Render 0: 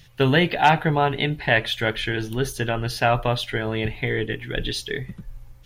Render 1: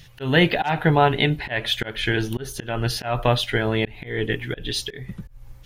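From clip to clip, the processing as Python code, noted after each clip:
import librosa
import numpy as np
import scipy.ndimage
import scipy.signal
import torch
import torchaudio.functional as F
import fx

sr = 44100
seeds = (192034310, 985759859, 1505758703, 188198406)

y = fx.auto_swell(x, sr, attack_ms=239.0)
y = y * librosa.db_to_amplitude(3.5)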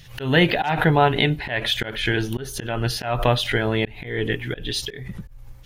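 y = fx.pre_swell(x, sr, db_per_s=110.0)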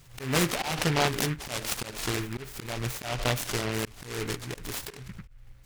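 y = fx.noise_mod_delay(x, sr, seeds[0], noise_hz=1700.0, depth_ms=0.2)
y = y * librosa.db_to_amplitude(-8.5)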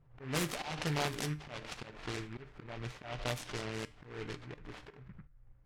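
y = fx.env_lowpass(x, sr, base_hz=980.0, full_db=-22.0)
y = fx.comb_fb(y, sr, f0_hz=150.0, decay_s=0.35, harmonics='all', damping=0.0, mix_pct=50)
y = y * librosa.db_to_amplitude(-4.5)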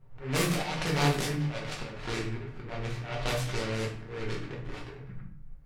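y = fx.room_shoebox(x, sr, seeds[1], volume_m3=72.0, walls='mixed', distance_m=1.0)
y = y * librosa.db_to_amplitude(2.5)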